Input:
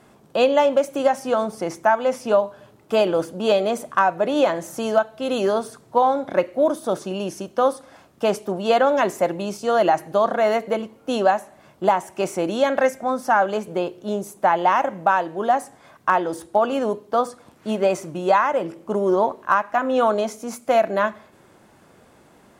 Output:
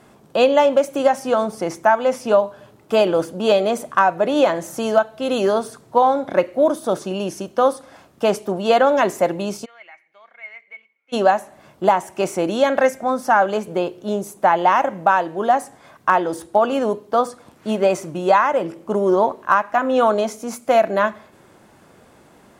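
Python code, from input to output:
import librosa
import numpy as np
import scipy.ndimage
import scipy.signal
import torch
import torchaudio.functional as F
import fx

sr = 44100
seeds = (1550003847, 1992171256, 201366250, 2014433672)

y = fx.bandpass_q(x, sr, hz=2200.0, q=19.0, at=(9.64, 11.12), fade=0.02)
y = y * 10.0 ** (2.5 / 20.0)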